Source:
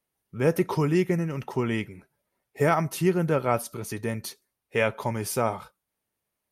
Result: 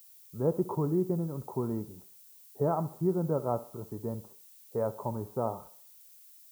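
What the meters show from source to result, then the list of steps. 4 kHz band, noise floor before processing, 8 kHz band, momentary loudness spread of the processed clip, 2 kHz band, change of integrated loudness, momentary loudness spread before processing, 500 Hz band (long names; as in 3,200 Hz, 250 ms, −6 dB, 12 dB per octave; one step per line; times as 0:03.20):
below −20 dB, −83 dBFS, −16.5 dB, 22 LU, below −25 dB, −6.0 dB, 11 LU, −5.5 dB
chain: Butterworth low-pass 1,100 Hz 36 dB per octave
background noise violet −50 dBFS
feedback echo with a high-pass in the loop 66 ms, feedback 46%, high-pass 200 Hz, level −16.5 dB
level −5.5 dB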